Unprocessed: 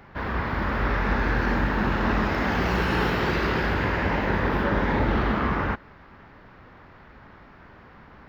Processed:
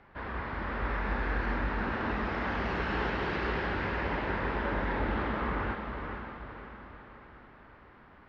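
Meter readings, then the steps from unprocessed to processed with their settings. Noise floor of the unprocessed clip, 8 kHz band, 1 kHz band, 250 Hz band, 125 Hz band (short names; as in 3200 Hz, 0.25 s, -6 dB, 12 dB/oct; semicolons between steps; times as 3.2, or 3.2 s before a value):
-50 dBFS, n/a, -7.0 dB, -9.5 dB, -9.5 dB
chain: LPF 3900 Hz 12 dB/oct; bell 140 Hz -5 dB 1.6 oct; on a send: diffused feedback echo 0.51 s, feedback 48%, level -6 dB; on the sum: gain -8 dB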